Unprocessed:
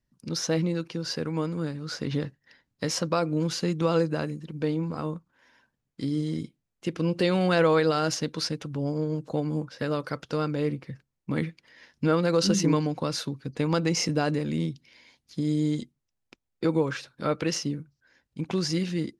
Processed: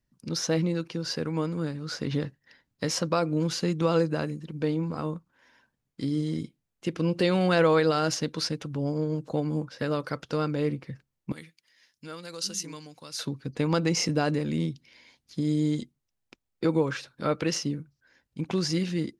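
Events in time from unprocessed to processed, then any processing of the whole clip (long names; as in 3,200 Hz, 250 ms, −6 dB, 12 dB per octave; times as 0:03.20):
0:11.32–0:13.19: first-order pre-emphasis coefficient 0.9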